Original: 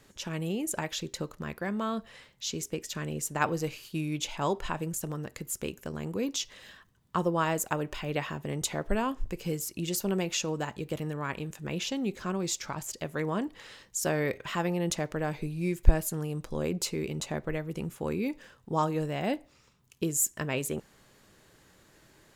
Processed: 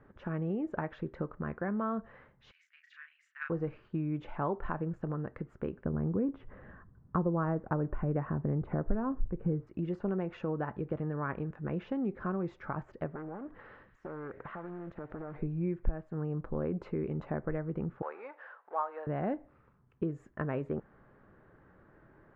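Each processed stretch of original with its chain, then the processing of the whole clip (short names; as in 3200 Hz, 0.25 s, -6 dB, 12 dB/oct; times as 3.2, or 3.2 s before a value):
2.51–3.5 steep high-pass 1800 Hz + doubler 34 ms -4 dB
5.85–9.67 LPF 1900 Hz + low shelf 350 Hz +10.5 dB
13.14–15.36 compressor 12:1, threshold -38 dBFS + thin delay 92 ms, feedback 85%, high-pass 2000 Hz, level -13.5 dB + Doppler distortion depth 0.8 ms
18.02–19.07 G.711 law mismatch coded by mu + HPF 640 Hz 24 dB/oct
whole clip: Chebyshev low-pass 1500 Hz, order 3; notch 960 Hz, Q 25; compressor 2.5:1, threshold -32 dBFS; gain +1.5 dB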